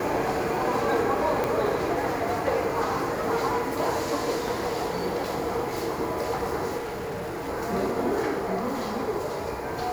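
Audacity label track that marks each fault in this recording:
1.440000	1.440000	click
6.770000	7.490000	clipping −29.5 dBFS

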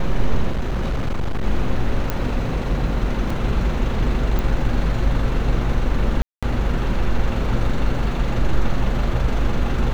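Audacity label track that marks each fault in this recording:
0.510000	1.450000	clipping −17.5 dBFS
2.100000	2.100000	click −8 dBFS
3.300000	3.300000	drop-out 3.8 ms
4.390000	4.390000	click −11 dBFS
6.220000	6.430000	drop-out 206 ms

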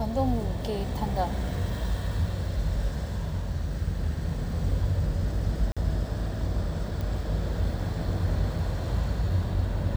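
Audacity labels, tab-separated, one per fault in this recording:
5.720000	5.770000	drop-out 46 ms
7.010000	7.010000	click

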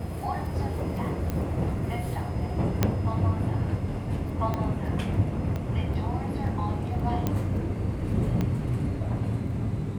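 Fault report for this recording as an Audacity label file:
1.300000	1.300000	click −17 dBFS
2.830000	2.830000	click −8 dBFS
4.540000	4.540000	click −16 dBFS
5.560000	5.560000	click −20 dBFS
7.270000	7.270000	click −13 dBFS
8.410000	8.410000	click −16 dBFS

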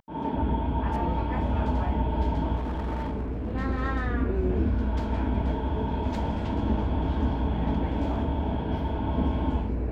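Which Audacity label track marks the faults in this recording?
2.560000	3.550000	clipping −27 dBFS

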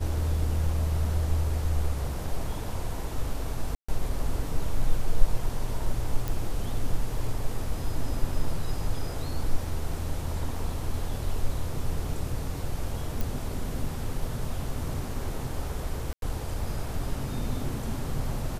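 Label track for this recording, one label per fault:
3.750000	3.880000	drop-out 135 ms
6.280000	6.280000	click
13.210000	13.210000	click
16.130000	16.220000	drop-out 92 ms

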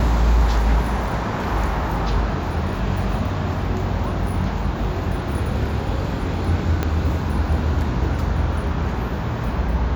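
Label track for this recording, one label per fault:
6.830000	6.830000	click −8 dBFS

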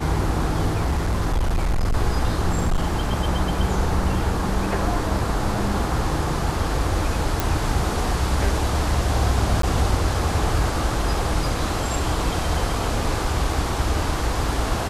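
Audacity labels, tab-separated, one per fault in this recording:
0.730000	1.960000	clipping −17 dBFS
2.490000	3.130000	clipping −16 dBFS
7.400000	7.400000	click
9.620000	9.630000	drop-out 13 ms

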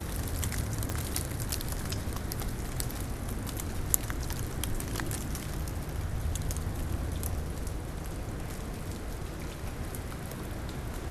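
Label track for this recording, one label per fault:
0.900000	0.900000	click −17 dBFS

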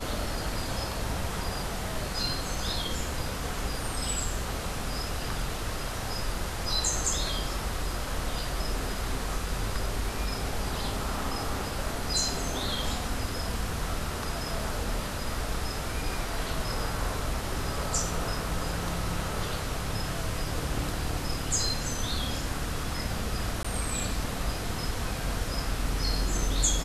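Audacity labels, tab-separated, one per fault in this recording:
23.630000	23.640000	drop-out 15 ms

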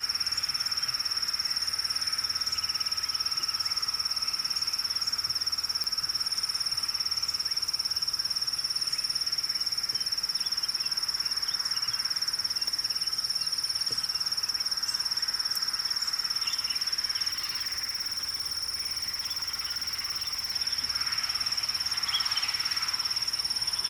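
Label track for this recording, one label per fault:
5.840000	5.840000	click
12.680000	12.680000	click −18 dBFS
17.310000	20.520000	clipping −27.5 dBFS

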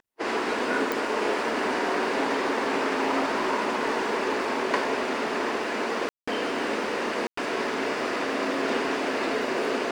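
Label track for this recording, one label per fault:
0.920000	0.920000	click
6.090000	6.280000	drop-out 185 ms
7.270000	7.370000	drop-out 104 ms

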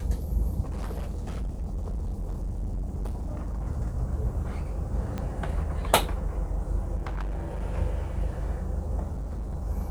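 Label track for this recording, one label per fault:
0.670000	3.680000	clipping −28 dBFS
5.180000	5.180000	click −20 dBFS
6.950000	7.620000	clipping −28 dBFS
9.120000	9.560000	clipping −29.5 dBFS

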